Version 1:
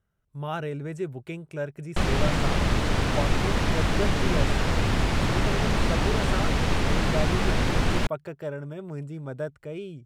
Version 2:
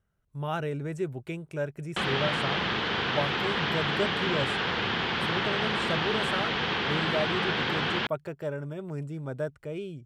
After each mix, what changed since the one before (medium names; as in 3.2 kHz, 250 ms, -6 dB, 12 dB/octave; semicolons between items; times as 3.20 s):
background: add cabinet simulation 230–4400 Hz, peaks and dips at 280 Hz -9 dB, 610 Hz -8 dB, 1.6 kHz +4 dB, 3.2 kHz +7 dB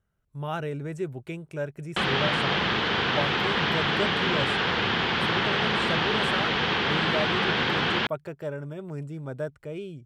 background +3.5 dB